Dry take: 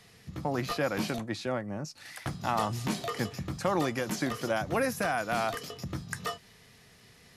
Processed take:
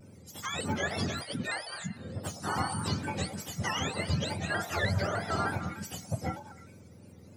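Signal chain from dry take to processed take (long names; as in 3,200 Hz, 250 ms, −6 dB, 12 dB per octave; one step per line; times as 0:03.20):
frequency axis turned over on the octave scale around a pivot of 1,000 Hz
echo through a band-pass that steps 104 ms, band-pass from 670 Hz, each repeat 0.7 octaves, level −7.5 dB
pitch modulation by a square or saw wave square 3.3 Hz, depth 100 cents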